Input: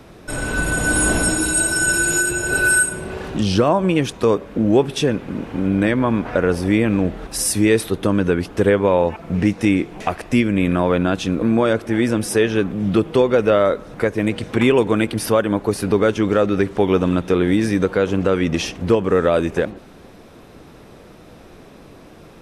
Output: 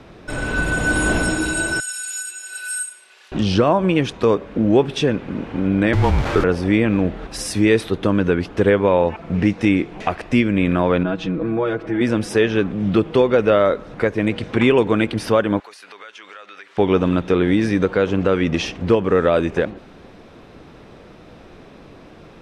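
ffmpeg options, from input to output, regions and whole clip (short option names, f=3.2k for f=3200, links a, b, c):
-filter_complex "[0:a]asettb=1/sr,asplit=3[a][b][c];[a]atrim=end=1.804[d];[b]atrim=start=1.8:end=3.32,asetpts=PTS-STARTPTS,afade=t=in:d=0.004:c=qsin,afade=t=out:st=1.516:d=0.004:c=qsin,highpass=f=1.2k:p=1,aderivative[e];[c]atrim=start=3.316[f];[d][e]acrossfade=d=0.004:c1=hsin:c2=qsin[g];[g][f]acrossfade=d=0.004:c1=qsin:c2=hsin,asettb=1/sr,asplit=3[h][i][j];[h]atrim=end=5.934[k];[i]atrim=start=5.93:end=6.44,asetpts=PTS-STARTPTS,afade=t=in:d=0.004:c=qsin,afade=t=out:st=0.506:d=0.004:c=qsin,aeval=exprs='val(0)+0.5*0.0891*sgn(val(0))':c=same,afreqshift=-150[l];[j]atrim=start=6.436[m];[k][l]acrossfade=d=0.004:c1=hsin:c2=qsin[n];[n][m]acrossfade=d=0.004:c1=qsin:c2=hsin,asettb=1/sr,asplit=3[o][p][q];[o]atrim=end=11.034[r];[p]atrim=start=11.03:end=12.01,asetpts=PTS-STARTPTS,afade=t=in:d=0.004:c=qsin,afade=t=out:st=0.976:d=0.004:c=qsin,aemphasis=mode=reproduction:type=75kf,aecho=1:1:6.2:0.92,atrim=end_sample=43218,acompressor=threshold=-27dB:ratio=1.5:attack=3.2:release=140:knee=1:detection=peak[s];[q]atrim=start=12.006[t];[r][s]acrossfade=d=0.004:c1=hsin:c2=qsin[u];[u][t]acrossfade=d=0.004:c1=qsin:c2=hsin,asettb=1/sr,asplit=3[v][w][x];[v]atrim=end=15.604[y];[w]atrim=start=15.6:end=16.78,asetpts=PTS-STARTPTS,afade=t=in:d=0.004:c=qsin,afade=t=out:st=1.176:d=0.004:c=qsin,highpass=1.4k,acompressor=threshold=-37dB:ratio=4:attack=3.2:release=140:knee=1:detection=peak[z];[x]atrim=start=16.776[aa];[y][z]acrossfade=d=0.004:c1=hsin:c2=qsin[ab];[ab][aa]acrossfade=d=0.004:c1=qsin:c2=hsin,lowpass=3.4k,aemphasis=mode=production:type=50kf"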